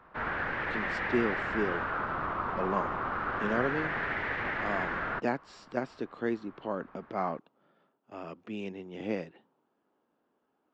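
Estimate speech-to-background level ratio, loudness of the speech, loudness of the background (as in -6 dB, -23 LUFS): -3.0 dB, -36.0 LUFS, -33.0 LUFS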